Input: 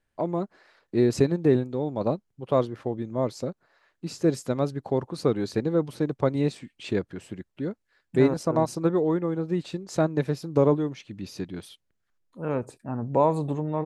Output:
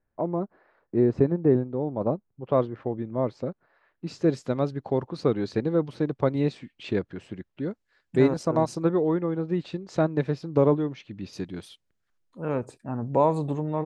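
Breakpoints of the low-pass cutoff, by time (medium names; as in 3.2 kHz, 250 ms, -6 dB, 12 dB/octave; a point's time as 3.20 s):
1.3 kHz
from 2.45 s 2.4 kHz
from 4.07 s 4.5 kHz
from 7.69 s 7.8 kHz
from 8.83 s 4.2 kHz
from 11.33 s 9 kHz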